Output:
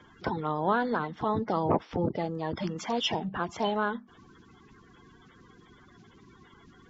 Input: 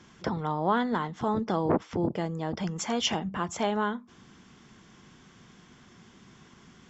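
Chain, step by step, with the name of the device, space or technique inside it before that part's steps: clip after many re-uploads (low-pass 5.2 kHz 24 dB/octave; coarse spectral quantiser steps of 30 dB)

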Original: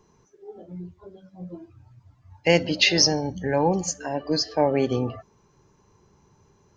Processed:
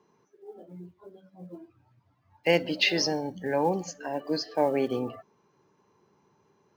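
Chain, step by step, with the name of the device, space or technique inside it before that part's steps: early digital voice recorder (band-pass 200–4000 Hz; block-companded coder 7-bit); trim -3.5 dB

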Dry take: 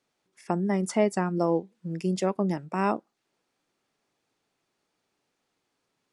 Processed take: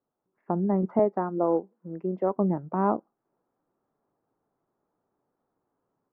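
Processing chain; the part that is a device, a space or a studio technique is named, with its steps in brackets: 0.99–2.37 s: high-pass 280 Hz 12 dB/octave; action camera in a waterproof case (low-pass 1.2 kHz 24 dB/octave; level rider gain up to 6.5 dB; trim -4.5 dB; AAC 96 kbps 48 kHz)

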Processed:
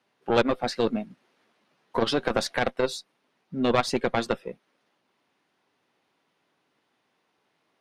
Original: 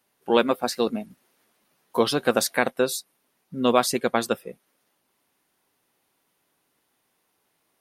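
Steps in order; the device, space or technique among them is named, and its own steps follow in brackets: valve radio (band-pass 110–4300 Hz; valve stage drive 13 dB, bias 0.65; transformer saturation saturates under 410 Hz); trim +5 dB

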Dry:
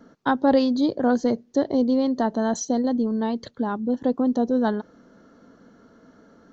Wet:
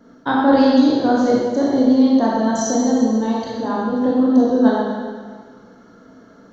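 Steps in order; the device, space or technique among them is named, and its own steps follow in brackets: stairwell (reverberation RT60 1.7 s, pre-delay 20 ms, DRR -5.5 dB)

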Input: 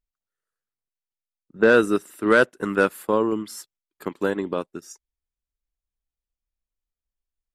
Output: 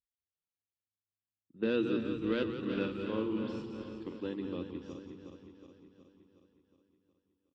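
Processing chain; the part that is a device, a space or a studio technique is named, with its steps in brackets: backward echo that repeats 183 ms, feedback 75%, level -8 dB; frequency-shifting delay pedal into a guitar cabinet (frequency-shifting echo 176 ms, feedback 46%, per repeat -100 Hz, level -10 dB; cabinet simulation 86–3800 Hz, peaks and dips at 130 Hz -6 dB, 190 Hz -5 dB, 420 Hz -9 dB, 630 Hz -5 dB, 1.5 kHz -5 dB, 2.1 kHz -9 dB); high-order bell 990 Hz -12 dB; 2.67–4.16 s: doubling 46 ms -6.5 dB; trim -8 dB

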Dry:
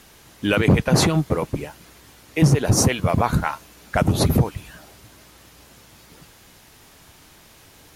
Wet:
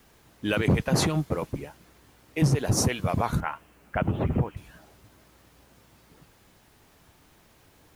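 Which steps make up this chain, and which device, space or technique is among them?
3.40–4.57 s: elliptic low-pass 3 kHz; plain cassette with noise reduction switched in (tape noise reduction on one side only decoder only; wow and flutter; white noise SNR 38 dB); trim -6.5 dB

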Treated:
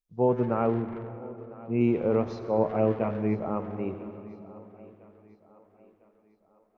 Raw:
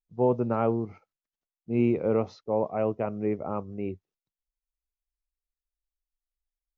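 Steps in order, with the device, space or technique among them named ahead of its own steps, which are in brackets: 0.54–1.81 s: elliptic low-pass 2.8 kHz; 2.56–3.46 s: doubling 18 ms -3 dB; saturated reverb return (on a send at -7 dB: reverberation RT60 2.6 s, pre-delay 69 ms + saturation -26.5 dBFS, distortion -9 dB); on the sum: thinning echo 1001 ms, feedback 46%, high-pass 160 Hz, level -20 dB

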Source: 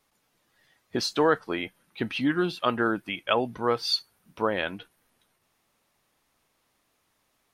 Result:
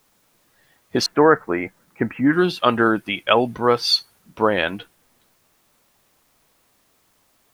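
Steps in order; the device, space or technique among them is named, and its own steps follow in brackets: 1.06–2.33 s: steep low-pass 2.2 kHz 48 dB/octave; plain cassette with noise reduction switched in (tape noise reduction on one side only decoder only; wow and flutter 25 cents; white noise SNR 42 dB); trim +8 dB

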